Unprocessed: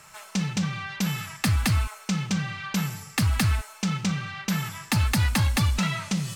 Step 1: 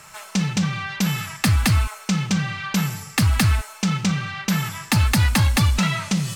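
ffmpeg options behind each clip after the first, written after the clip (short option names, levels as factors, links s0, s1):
-af "aeval=exprs='0.15*(cos(1*acos(clip(val(0)/0.15,-1,1)))-cos(1*PI/2))+0.0015*(cos(5*acos(clip(val(0)/0.15,-1,1)))-cos(5*PI/2))':c=same,volume=1.78"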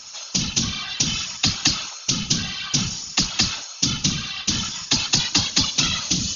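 -af "aexciter=amount=3.9:drive=9.7:freq=3000,afftfilt=real='re*between(b*sr/4096,110,6900)':imag='im*between(b*sr/4096,110,6900)':win_size=4096:overlap=0.75,afftfilt=real='hypot(re,im)*cos(2*PI*random(0))':imag='hypot(re,im)*sin(2*PI*random(1))':win_size=512:overlap=0.75"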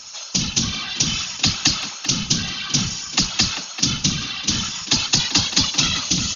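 -filter_complex "[0:a]asplit=2[s0][s1];[s1]adelay=390,highpass=300,lowpass=3400,asoftclip=type=hard:threshold=0.266,volume=0.398[s2];[s0][s2]amix=inputs=2:normalize=0,volume=1.19"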